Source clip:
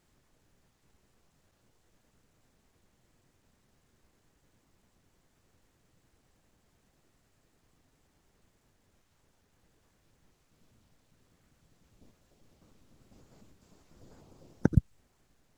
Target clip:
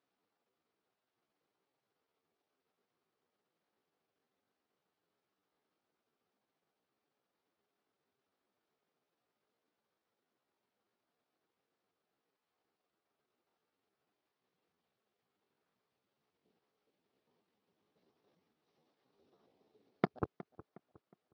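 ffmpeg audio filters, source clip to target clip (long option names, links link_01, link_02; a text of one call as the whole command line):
ffmpeg -i in.wav -filter_complex "[0:a]asetrate=35002,aresample=44100,atempo=1.25992,aeval=exprs='0.447*(cos(1*acos(clip(val(0)/0.447,-1,1)))-cos(1*PI/2))+0.0251*(cos(5*acos(clip(val(0)/0.447,-1,1)))-cos(5*PI/2))+0.0891*(cos(7*acos(clip(val(0)/0.447,-1,1)))-cos(7*PI/2))':channel_layout=same,asoftclip=type=tanh:threshold=-20.5dB,atempo=0.73,highpass=280,equalizer=frequency=430:width_type=q:width=4:gain=5,equalizer=frequency=760:width_type=q:width=4:gain=4,equalizer=frequency=1200:width_type=q:width=4:gain=3,lowpass=frequency=4600:width=0.5412,lowpass=frequency=4600:width=1.3066,asplit=2[link_01][link_02];[link_02]adelay=363,lowpass=frequency=2000:poles=1,volume=-17.5dB,asplit=2[link_03][link_04];[link_04]adelay=363,lowpass=frequency=2000:poles=1,volume=0.38,asplit=2[link_05][link_06];[link_06]adelay=363,lowpass=frequency=2000:poles=1,volume=0.38[link_07];[link_01][link_03][link_05][link_07]amix=inputs=4:normalize=0,volume=6.5dB" out.wav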